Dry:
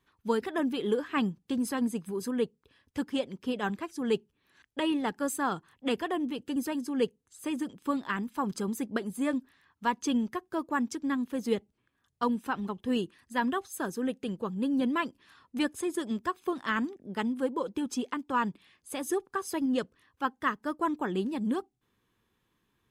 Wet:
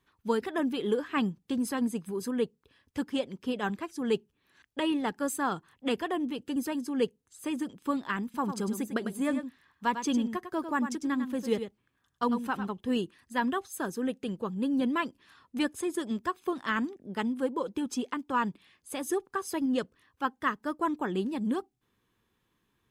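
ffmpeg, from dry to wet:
ffmpeg -i in.wav -filter_complex "[0:a]asettb=1/sr,asplit=3[link_01][link_02][link_03];[link_01]atrim=end=8.244[link_04];[link_02]atrim=start=8.24:end=12.67,asetpts=PTS-STARTPTS,afade=type=in:duration=0.004:curve=qsin,afade=type=out:start_time=4.426:duration=0.004:curve=qsin,aecho=1:1:100:0.355,atrim=end_sample=195363[link_05];[link_03]atrim=start=12.666[link_06];[link_04][link_05]acrossfade=duration=0.004:curve1=hsin:curve2=qsin[link_07];[link_07][link_06]acrossfade=duration=0.004:curve1=qsin:curve2=hsin" out.wav

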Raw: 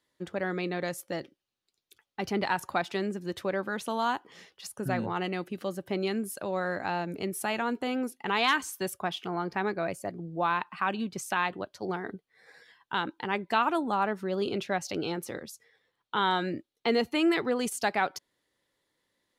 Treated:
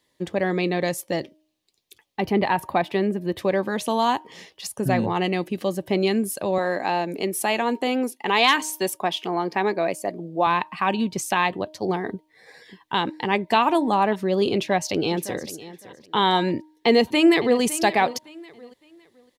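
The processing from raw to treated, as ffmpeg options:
ffmpeg -i in.wav -filter_complex "[0:a]asettb=1/sr,asplit=3[link_01][link_02][link_03];[link_01]atrim=end=2.204[link_04];[link_02]atrim=start=2.2:end=3.39,asetpts=PTS-STARTPTS,afade=type=in:duration=0.004:curve=qsin,afade=type=out:start_time=1.186:duration=0.004:curve=qsin,equalizer=frequency=6500:width=0.92:gain=-14.5[link_05];[link_03]atrim=start=3.386[link_06];[link_04][link_05]acrossfade=duration=0.004:curve1=hsin:curve2=qsin[link_07];[link_07][link_06]acrossfade=duration=0.004:curve1=qsin:curve2=hsin,asettb=1/sr,asplit=3[link_08][link_09][link_10];[link_08]atrim=end=6.584[link_11];[link_09]atrim=start=6.58:end=10.47,asetpts=PTS-STARTPTS,afade=type=in:duration=0.004:curve=qsin,afade=type=out:start_time=3.886:duration=0.004:curve=qsin,highpass=240[link_12];[link_10]atrim=start=10.466[link_13];[link_11][link_12]acrossfade=duration=0.004:curve1=hsin:curve2=qsin[link_14];[link_14][link_13]acrossfade=duration=0.004:curve1=qsin:curve2=hsin,asplit=2[link_15][link_16];[link_16]afade=type=in:start_time=12.1:duration=0.01,afade=type=out:start_time=12.97:duration=0.01,aecho=0:1:590|1180|1770|2360|2950|3540|4130|4720|5310:0.211349|0.147944|0.103561|0.0724927|0.0507449|0.0355214|0.024865|0.0174055|0.0121838[link_17];[link_15][link_17]amix=inputs=2:normalize=0,asplit=2[link_18][link_19];[link_19]afade=type=in:start_time=14.54:duration=0.01,afade=type=out:start_time=15.49:duration=0.01,aecho=0:1:560|1120:0.158489|0.0316979[link_20];[link_18][link_20]amix=inputs=2:normalize=0,asplit=2[link_21][link_22];[link_22]afade=type=in:start_time=16.54:duration=0.01,afade=type=out:start_time=17.61:duration=0.01,aecho=0:1:560|1120|1680:0.177828|0.0533484|0.0160045[link_23];[link_21][link_23]amix=inputs=2:normalize=0,equalizer=frequency=1400:width=5.5:gain=-14.5,bandreject=frequency=310.2:width_type=h:width=4,bandreject=frequency=620.4:width_type=h:width=4,bandreject=frequency=930.6:width_type=h:width=4,volume=9dB" out.wav

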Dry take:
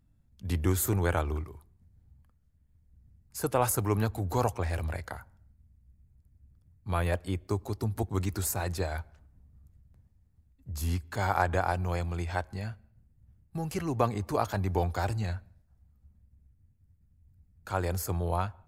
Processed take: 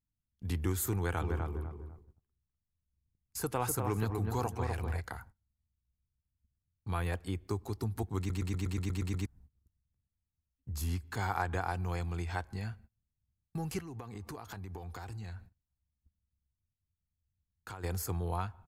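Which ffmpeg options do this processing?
ffmpeg -i in.wav -filter_complex "[0:a]asplit=3[link_01][link_02][link_03];[link_01]afade=type=out:start_time=1.2:duration=0.02[link_04];[link_02]asplit=2[link_05][link_06];[link_06]adelay=249,lowpass=frequency=1300:poles=1,volume=-4dB,asplit=2[link_07][link_08];[link_08]adelay=249,lowpass=frequency=1300:poles=1,volume=0.26,asplit=2[link_09][link_10];[link_10]adelay=249,lowpass=frequency=1300:poles=1,volume=0.26,asplit=2[link_11][link_12];[link_12]adelay=249,lowpass=frequency=1300:poles=1,volume=0.26[link_13];[link_05][link_07][link_09][link_11][link_13]amix=inputs=5:normalize=0,afade=type=in:start_time=1.2:duration=0.02,afade=type=out:start_time=5:duration=0.02[link_14];[link_03]afade=type=in:start_time=5:duration=0.02[link_15];[link_04][link_14][link_15]amix=inputs=3:normalize=0,asplit=3[link_16][link_17][link_18];[link_16]afade=type=out:start_time=13.79:duration=0.02[link_19];[link_17]acompressor=threshold=-39dB:ratio=10:attack=3.2:release=140:knee=1:detection=peak,afade=type=in:start_time=13.79:duration=0.02,afade=type=out:start_time=17.83:duration=0.02[link_20];[link_18]afade=type=in:start_time=17.83:duration=0.02[link_21];[link_19][link_20][link_21]amix=inputs=3:normalize=0,asplit=10[link_22][link_23][link_24][link_25][link_26][link_27][link_28][link_29][link_30][link_31];[link_22]atrim=end=8.302[link_32];[link_23]atrim=start=8.178:end=8.302[link_33];[link_24]atrim=start=8.178:end=8.302[link_34];[link_25]atrim=start=8.178:end=8.302[link_35];[link_26]atrim=start=8.178:end=8.302[link_36];[link_27]atrim=start=8.178:end=8.302[link_37];[link_28]atrim=start=8.178:end=8.302[link_38];[link_29]atrim=start=8.178:end=8.302[link_39];[link_30]atrim=start=8.178:end=8.302[link_40];[link_31]atrim=start=9.258[link_41];[link_32][link_33]acrossfade=duration=0.004:curve1=hsin:curve2=hsin[link_42];[link_42][link_34]acrossfade=duration=0.004:curve1=hsin:curve2=hsin[link_43];[link_43][link_35]acrossfade=duration=0.004:curve1=hsin:curve2=hsin[link_44];[link_44][link_36]acrossfade=duration=0.004:curve1=hsin:curve2=hsin[link_45];[link_45][link_37]acrossfade=duration=0.004:curve1=hsin:curve2=hsin[link_46];[link_46][link_38]acrossfade=duration=0.004:curve1=hsin:curve2=hsin[link_47];[link_47][link_39]acrossfade=duration=0.004:curve1=hsin:curve2=hsin[link_48];[link_48][link_40]acrossfade=duration=0.004:curve1=hsin:curve2=hsin[link_49];[link_49][link_41]acrossfade=duration=0.004:curve1=hsin:curve2=hsin,agate=range=-23dB:threshold=-52dB:ratio=16:detection=peak,equalizer=frequency=590:width=7.4:gain=-14,acompressor=threshold=-38dB:ratio=1.5" out.wav

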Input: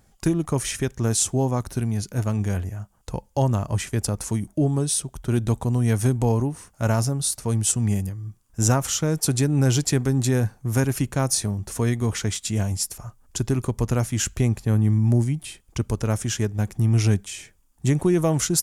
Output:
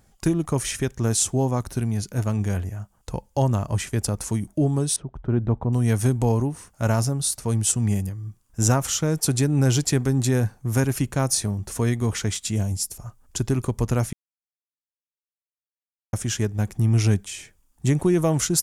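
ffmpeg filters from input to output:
ffmpeg -i in.wav -filter_complex "[0:a]asettb=1/sr,asplit=3[link_01][link_02][link_03];[link_01]atrim=end=4.964[link_04];[link_02]atrim=start=4.96:end=5.73,asetpts=PTS-STARTPTS,afade=type=in:duration=0.004:curve=qsin,afade=type=out:start_time=0.766:duration=0.004:curve=qsin,lowpass=1300[link_05];[link_03]atrim=start=5.726[link_06];[link_04][link_05]acrossfade=duration=0.004:curve1=hsin:curve2=qsin[link_07];[link_07][link_06]acrossfade=duration=0.004:curve1=qsin:curve2=hsin,asettb=1/sr,asplit=3[link_08][link_09][link_10];[link_08]atrim=end=12.564[link_11];[link_09]atrim=start=12.56:end=13.06,asetpts=PTS-STARTPTS,afade=type=in:duration=0.004:curve=qsin,afade=type=out:start_time=0.496:duration=0.004:curve=qsin,equalizer=frequency=1600:width_type=o:width=2.4:gain=-7.5[link_12];[link_10]atrim=start=13.056[link_13];[link_11][link_12]acrossfade=duration=0.004:curve1=hsin:curve2=qsin[link_14];[link_14][link_13]acrossfade=duration=0.004:curve1=qsin:curve2=hsin,asplit=3[link_15][link_16][link_17];[link_15]atrim=end=14.13,asetpts=PTS-STARTPTS,afade=type=out:start_time=14.126:duration=0.004:curve=hsin[link_18];[link_16]atrim=start=14.13:end=16.13,asetpts=PTS-STARTPTS,volume=0[link_19];[link_17]atrim=start=16.13,asetpts=PTS-STARTPTS,afade=type=in:duration=0.004:curve=hsin[link_20];[link_18][link_19][link_20]concat=n=3:v=0:a=1" out.wav

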